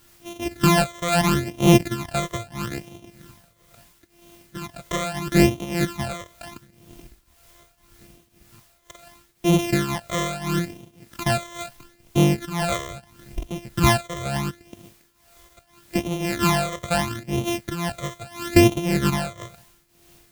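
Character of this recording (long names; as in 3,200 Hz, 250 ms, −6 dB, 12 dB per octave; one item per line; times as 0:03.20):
a buzz of ramps at a fixed pitch in blocks of 128 samples
phaser sweep stages 12, 0.76 Hz, lowest notch 260–1,600 Hz
a quantiser's noise floor 10 bits, dither triangular
tremolo triangle 1.9 Hz, depth 85%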